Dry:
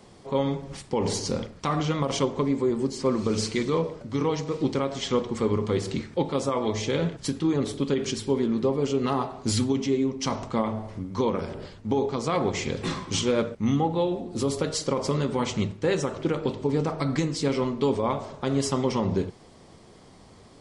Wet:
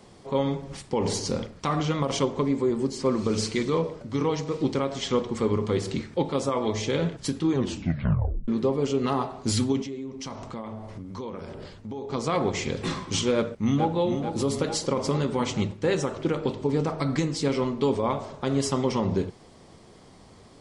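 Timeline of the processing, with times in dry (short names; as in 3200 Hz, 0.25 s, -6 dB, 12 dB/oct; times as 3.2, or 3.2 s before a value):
7.52 tape stop 0.96 s
9.82–12.1 compressor 3:1, threshold -35 dBFS
13.34–13.97 echo throw 0.44 s, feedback 65%, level -8 dB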